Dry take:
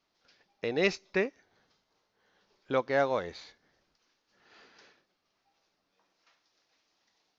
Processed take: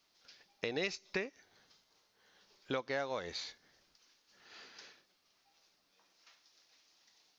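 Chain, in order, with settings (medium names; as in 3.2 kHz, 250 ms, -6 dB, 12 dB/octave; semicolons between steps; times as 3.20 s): treble shelf 2.5 kHz +11 dB; compression 6:1, threshold -32 dBFS, peak gain reduction 14 dB; trim -1.5 dB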